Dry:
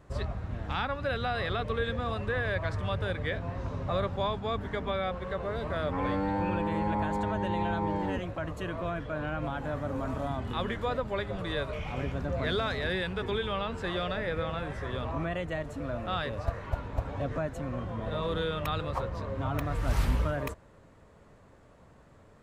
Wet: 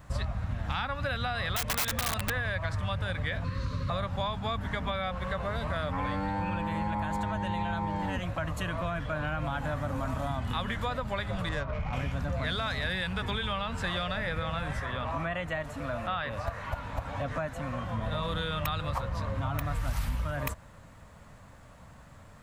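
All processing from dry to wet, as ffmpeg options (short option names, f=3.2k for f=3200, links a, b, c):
-filter_complex "[0:a]asettb=1/sr,asplit=3[a][b][c];[a]atrim=end=1.564[d];[b]atrim=start=1.56:end=2.3,asetpts=PTS-STARTPTS,afade=t=in:d=0.004:c=qsin,afade=t=out:st=0.736:d=0.004:c=qsin,bandreject=f=60:t=h:w=6,bandreject=f=120:t=h:w=6,bandreject=f=180:t=h:w=6,bandreject=f=240:t=h:w=6,bandreject=f=300:t=h:w=6,bandreject=f=360:t=h:w=6,bandreject=f=420:t=h:w=6,aeval=exprs='(mod(17.8*val(0)+1,2)-1)/17.8':c=same[e];[c]atrim=start=2.296[f];[d][e]acrossfade=d=0.004:c1=hsin:c2=qsin[g];[g][f]acrossfade=d=0.004:c1=qsin:c2=hsin,asettb=1/sr,asplit=3[h][i][j];[h]atrim=end=3.444[k];[i]atrim=start=3.44:end=3.9,asetpts=PTS-STARTPTS,afade=t=in:d=0.004:c=qsin,afade=t=out:st=0.456:d=0.004:c=qsin,asuperstop=centerf=760:order=12:qfactor=1.9,equalizer=f=4.3k:t=o:w=0.21:g=14.5[l];[j]atrim=start=3.896[m];[k][l]acrossfade=d=0.004:c1=hsin:c2=qsin[n];[n][m]acrossfade=d=0.004:c1=qsin:c2=hsin,asettb=1/sr,asplit=3[o][p][q];[o]atrim=end=11.494[r];[p]atrim=start=11.49:end=11.93,asetpts=PTS-STARTPTS,afade=t=in:d=0.004:c=qsin,afade=t=out:st=0.436:d=0.004:c=qsin,lowpass=2.7k,adynamicsmooth=sensitivity=4:basefreq=1.4k[s];[q]atrim=start=11.926[t];[r][s]acrossfade=d=0.004:c1=hsin:c2=qsin[u];[u][t]acrossfade=d=0.004:c1=qsin:c2=hsin,asettb=1/sr,asplit=3[v][w][x];[v]atrim=end=14.804[y];[w]atrim=start=14.8:end=17.92,asetpts=PTS-STARTPTS,afade=t=in:d=0.004:c=qsin,afade=t=out:st=3.116:d=0.004:c=qsin,acrossover=split=3100[z][aa];[aa]acompressor=threshold=-60dB:ratio=4:attack=1:release=60[ab];[z][ab]amix=inputs=2:normalize=0,lowshelf=f=210:g=-8[ac];[x]atrim=start=17.916[ad];[y][ac]acrossfade=d=0.004:c1=hsin:c2=qsin[ae];[ae][ad]acrossfade=d=0.004:c1=qsin:c2=hsin,equalizer=f=390:w=1.7:g=-14,acompressor=threshold=-35dB:ratio=6,highshelf=f=10k:g=9,volume=7dB"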